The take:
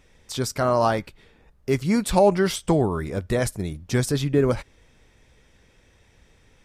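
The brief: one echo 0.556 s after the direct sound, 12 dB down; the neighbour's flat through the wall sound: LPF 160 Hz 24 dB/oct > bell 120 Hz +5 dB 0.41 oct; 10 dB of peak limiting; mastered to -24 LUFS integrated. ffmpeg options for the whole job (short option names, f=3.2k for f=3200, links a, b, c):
-af "alimiter=limit=-16dB:level=0:latency=1,lowpass=f=160:w=0.5412,lowpass=f=160:w=1.3066,equalizer=f=120:t=o:w=0.41:g=5,aecho=1:1:556:0.251,volume=8.5dB"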